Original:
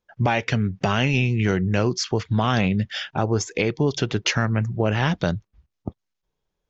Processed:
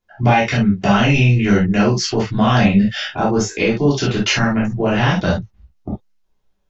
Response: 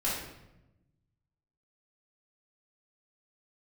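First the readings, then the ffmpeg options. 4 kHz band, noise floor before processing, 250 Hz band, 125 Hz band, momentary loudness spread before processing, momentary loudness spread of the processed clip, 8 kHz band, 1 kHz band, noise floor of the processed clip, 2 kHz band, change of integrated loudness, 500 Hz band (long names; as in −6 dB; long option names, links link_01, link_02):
+5.5 dB, −80 dBFS, +8.5 dB, +5.0 dB, 6 LU, 7 LU, can't be measured, +7.5 dB, −64 dBFS, +6.0 dB, +6.5 dB, +5.5 dB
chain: -filter_complex "[1:a]atrim=start_sample=2205,atrim=end_sample=3528[link_01];[0:a][link_01]afir=irnorm=-1:irlink=0"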